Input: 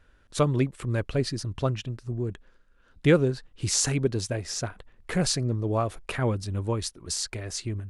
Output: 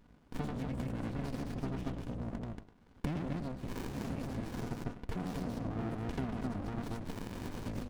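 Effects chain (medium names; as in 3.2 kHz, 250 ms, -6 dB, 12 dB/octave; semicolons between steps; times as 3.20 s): octave divider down 1 oct, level +3 dB; 4.57–6.76 s: peaking EQ 390 Hz +9.5 dB 2.3 oct; loudspeakers at several distances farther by 29 m -3 dB, 80 m -4 dB; peak limiter -18.5 dBFS, peak gain reduction 13.5 dB; high-pass 140 Hz 12 dB/octave; comb 4.1 ms, depth 52%; tape echo 101 ms, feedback 21%, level -13 dB, low-pass 2.3 kHz; compression 2:1, threshold -43 dBFS, peak gain reduction 11 dB; sliding maximum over 65 samples; trim +2.5 dB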